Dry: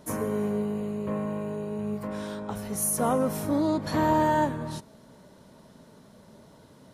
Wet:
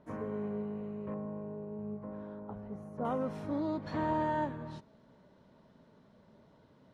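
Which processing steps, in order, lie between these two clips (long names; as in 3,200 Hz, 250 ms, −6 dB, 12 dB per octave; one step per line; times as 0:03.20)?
low-pass filter 2,100 Hz 12 dB per octave, from 0:01.14 1,000 Hz, from 0:03.05 3,400 Hz
level −9 dB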